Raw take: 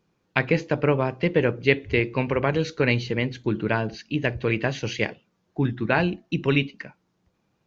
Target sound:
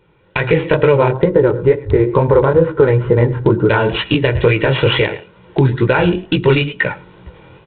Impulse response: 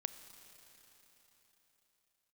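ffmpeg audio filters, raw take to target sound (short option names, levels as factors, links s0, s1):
-filter_complex "[0:a]acrusher=samples=6:mix=1:aa=0.000001,dynaudnorm=f=140:g=3:m=5.31,aecho=1:1:105:0.0794,acompressor=threshold=0.0794:ratio=10,asplit=3[s0][s1][s2];[s0]afade=t=out:st=1.08:d=0.02[s3];[s1]lowpass=f=1400:w=0.5412,lowpass=f=1400:w=1.3066,afade=t=in:st=1.08:d=0.02,afade=t=out:st=3.68:d=0.02[s4];[s2]afade=t=in:st=3.68:d=0.02[s5];[s3][s4][s5]amix=inputs=3:normalize=0,aecho=1:1:2.1:0.65,flanger=delay=15.5:depth=7.8:speed=2.2,alimiter=level_in=8.91:limit=0.891:release=50:level=0:latency=1,volume=0.891" -ar 8000 -c:a adpcm_g726 -b:a 32k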